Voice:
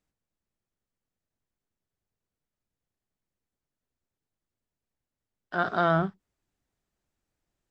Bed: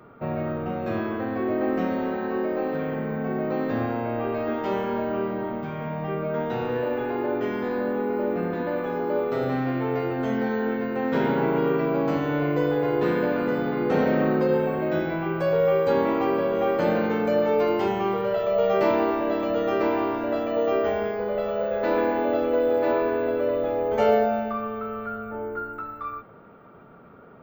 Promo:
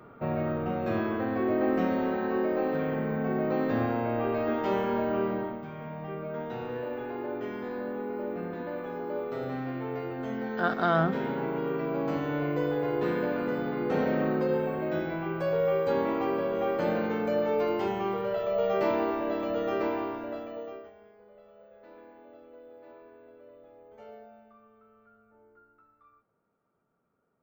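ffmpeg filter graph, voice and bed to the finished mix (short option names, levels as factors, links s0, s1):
-filter_complex "[0:a]adelay=5050,volume=0.891[s0];[1:a]volume=1.19,afade=t=out:st=5.34:d=0.25:silence=0.446684,afade=t=in:st=11.64:d=0.54:silence=0.707946,afade=t=out:st=19.77:d=1.14:silence=0.0707946[s1];[s0][s1]amix=inputs=2:normalize=0"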